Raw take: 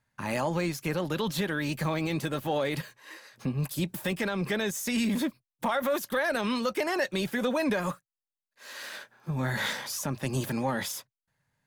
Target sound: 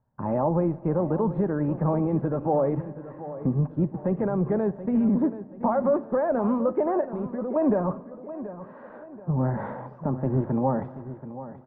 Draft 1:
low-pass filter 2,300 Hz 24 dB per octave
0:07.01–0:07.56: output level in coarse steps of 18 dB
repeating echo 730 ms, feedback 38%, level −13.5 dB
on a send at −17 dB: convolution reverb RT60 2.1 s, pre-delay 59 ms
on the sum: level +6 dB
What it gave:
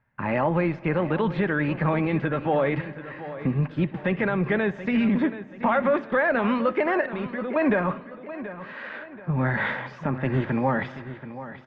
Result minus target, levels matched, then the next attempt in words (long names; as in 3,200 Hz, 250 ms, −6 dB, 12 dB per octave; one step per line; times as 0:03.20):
2,000 Hz band +18.0 dB
low-pass filter 970 Hz 24 dB per octave
0:07.01–0:07.56: output level in coarse steps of 18 dB
repeating echo 730 ms, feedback 38%, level −13.5 dB
on a send at −17 dB: convolution reverb RT60 2.1 s, pre-delay 59 ms
on the sum: level +6 dB